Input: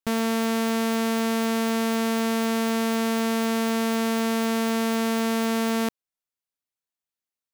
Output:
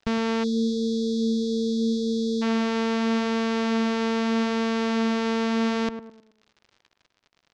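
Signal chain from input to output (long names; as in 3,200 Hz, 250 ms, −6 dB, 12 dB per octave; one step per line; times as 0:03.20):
low-shelf EQ 70 Hz +11.5 dB
surface crackle 88 per second −43 dBFS
on a send: tape delay 106 ms, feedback 43%, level −9.5 dB, low-pass 1,200 Hz
on the sum: time-frequency box erased 0:00.43–0:02.42, 550–3,200 Hz
in parallel at −1.5 dB: brickwall limiter −24 dBFS, peak gain reduction 9 dB
on the sum: low-pass filter 5,600 Hz 24 dB per octave
notch filter 710 Hz, Q 12
level −3 dB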